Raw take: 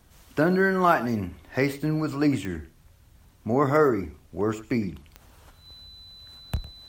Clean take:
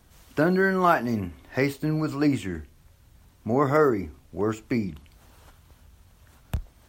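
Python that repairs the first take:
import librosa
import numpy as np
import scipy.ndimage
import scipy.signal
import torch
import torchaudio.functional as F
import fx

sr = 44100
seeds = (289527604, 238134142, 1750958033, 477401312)

y = fx.fix_declick_ar(x, sr, threshold=10.0)
y = fx.notch(y, sr, hz=4000.0, q=30.0)
y = fx.fix_echo_inverse(y, sr, delay_ms=107, level_db=-17.0)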